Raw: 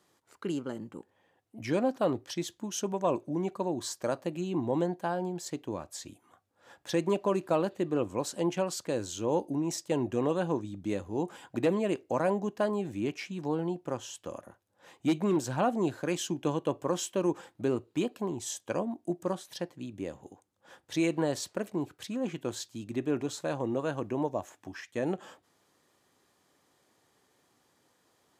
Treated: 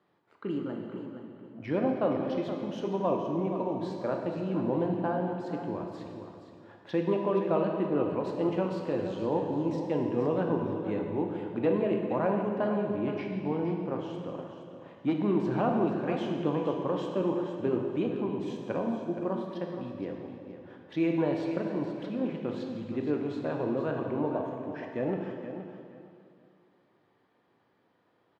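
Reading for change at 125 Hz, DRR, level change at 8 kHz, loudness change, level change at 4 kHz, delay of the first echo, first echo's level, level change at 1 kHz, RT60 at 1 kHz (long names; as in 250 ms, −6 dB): +2.0 dB, 1.0 dB, below −20 dB, +1.5 dB, −7.5 dB, 471 ms, −10.0 dB, +1.0 dB, 2.4 s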